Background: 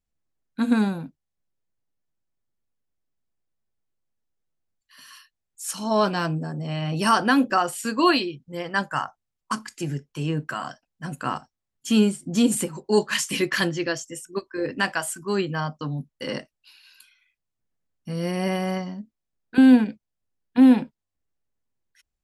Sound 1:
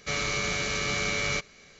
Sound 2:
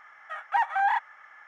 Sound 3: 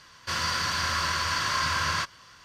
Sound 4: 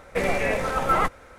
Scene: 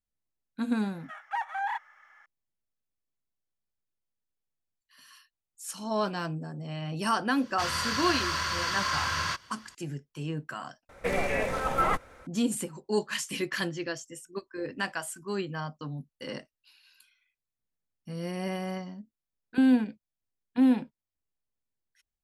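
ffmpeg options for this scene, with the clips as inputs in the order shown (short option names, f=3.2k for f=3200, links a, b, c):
-filter_complex "[0:a]volume=-8dB[a];[2:a]highshelf=f=3.8k:g=8[b];[a]asplit=2[c][d];[c]atrim=end=10.894[e];[4:a]atrim=end=1.38,asetpts=PTS-STARTPTS,volume=-4.5dB[f];[d]atrim=start=12.266[g];[b]atrim=end=1.47,asetpts=PTS-STARTPTS,volume=-8dB,afade=t=in:d=0.004:c=hsin,afade=t=out:st=1.466:d=0.004:c=hsin,adelay=790[h];[3:a]atrim=end=2.44,asetpts=PTS-STARTPTS,volume=-3dB,afade=t=in:d=0.004:c=hsin,afade=t=out:st=2.436:d=0.004:c=hsin,adelay=7310[i];[e][f]acrossfade=d=0.004:c1=hsin:c2=hsin[j];[j][g]acrossfade=d=0.004:c1=hsin:c2=hsin[k];[k][h][i]amix=inputs=3:normalize=0"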